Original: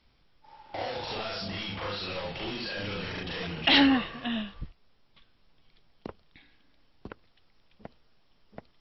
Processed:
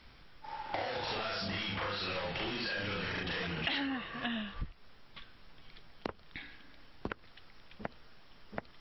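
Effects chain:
parametric band 1,600 Hz +5.5 dB 1.1 octaves
downward compressor 8 to 1, threshold −42 dBFS, peak gain reduction 25 dB
level +8 dB

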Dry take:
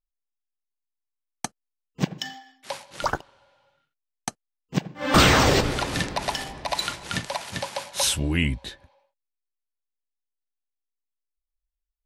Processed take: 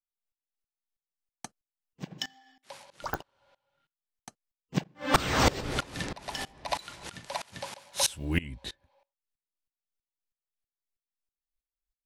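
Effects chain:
0:07.78–0:08.39: one scale factor per block 7 bits
digital clicks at 0:03.14, −10 dBFS
tremolo with a ramp in dB swelling 3.1 Hz, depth 23 dB

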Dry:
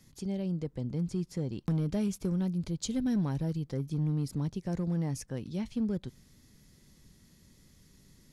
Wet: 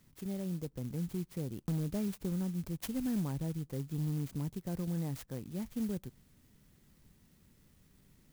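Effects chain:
converter with an unsteady clock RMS 0.075 ms
level −4.5 dB

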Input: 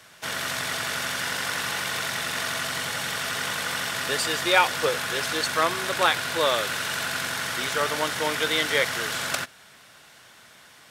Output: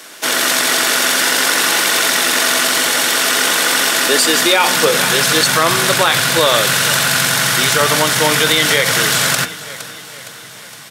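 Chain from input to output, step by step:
high-shelf EQ 4,500 Hz +7.5 dB
hum removal 89.18 Hz, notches 40
high-pass filter sweep 300 Hz → 130 Hz, 0:04.03–0:05.52
repeating echo 463 ms, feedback 55%, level −18.5 dB
boost into a limiter +13 dB
level −1 dB

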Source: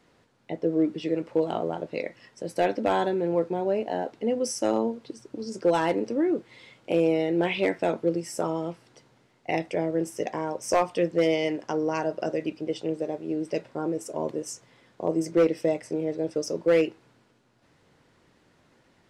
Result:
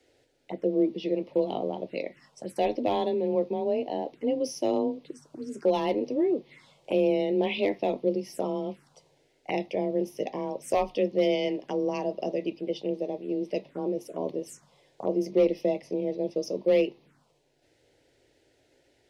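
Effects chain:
frequency shifter +23 Hz
phaser swept by the level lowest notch 180 Hz, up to 1,500 Hz, full sweep at −28 dBFS

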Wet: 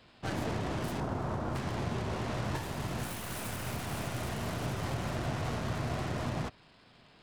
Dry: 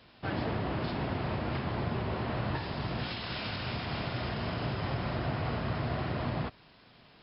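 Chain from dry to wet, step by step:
stylus tracing distortion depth 0.3 ms
0:01.00–0:01.56: high shelf with overshoot 1,700 Hz −7.5 dB, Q 1.5
level −1.5 dB

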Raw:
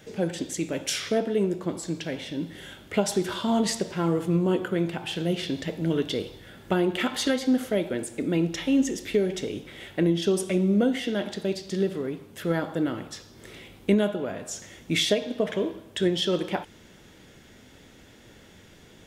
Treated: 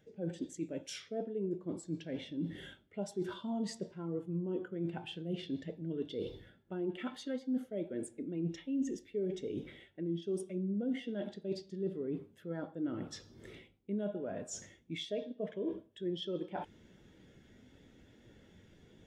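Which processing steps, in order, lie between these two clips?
reversed playback
downward compressor 10 to 1, threshold −36 dBFS, peak gain reduction 20.5 dB
reversed playback
every bin expanded away from the loudest bin 1.5 to 1
level −2 dB

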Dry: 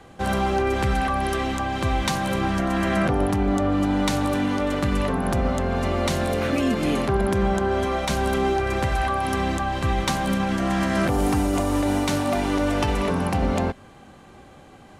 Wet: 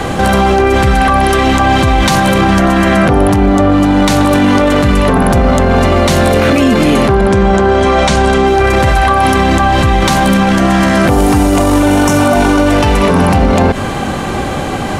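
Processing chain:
0:07.12–0:08.47: low-pass filter 9,000 Hz 24 dB per octave
0:11.82–0:12.61: healed spectral selection 1,300–5,100 Hz after
boost into a limiter +31.5 dB
level −1 dB

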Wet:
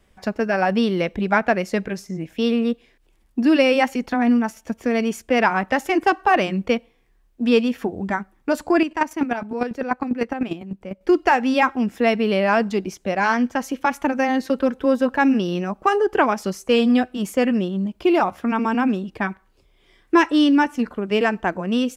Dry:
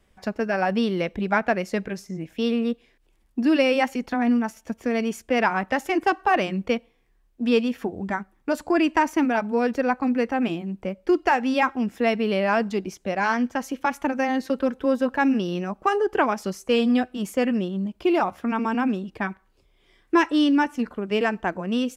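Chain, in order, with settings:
0:08.81–0:11.01: square-wave tremolo 10 Hz, depth 65%, duty 20%
level +3.5 dB

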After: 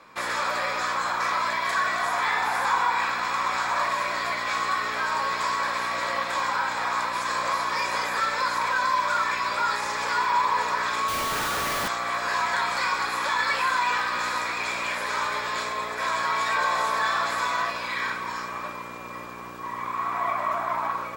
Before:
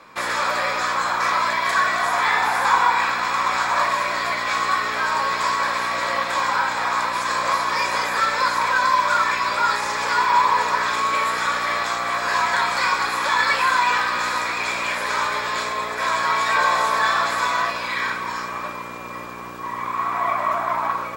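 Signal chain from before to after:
in parallel at −3 dB: brickwall limiter −13 dBFS, peak gain reduction 8.5 dB
0:11.08–0:11.88: on the sum: comparator with hysteresis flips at −25 dBFS
level −9 dB

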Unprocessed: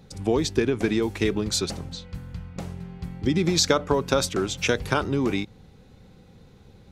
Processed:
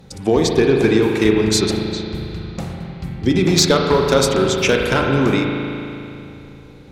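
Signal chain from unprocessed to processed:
mains-hum notches 50/100/150/200 Hz
asymmetric clip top −15 dBFS
spring reverb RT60 2.8 s, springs 37 ms, chirp 25 ms, DRR 1 dB
level +6.5 dB

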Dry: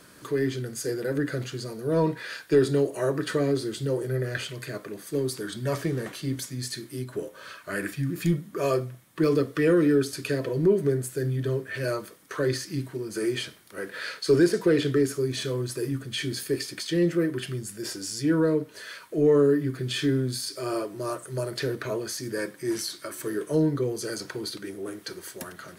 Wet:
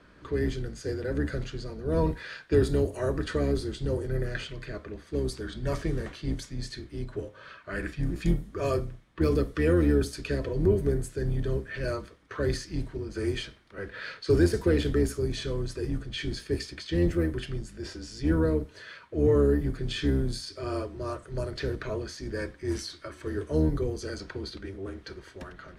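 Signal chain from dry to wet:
sub-octave generator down 2 octaves, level +1 dB
low-pass that shuts in the quiet parts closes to 2,800 Hz, open at −17.5 dBFS
level −3.5 dB

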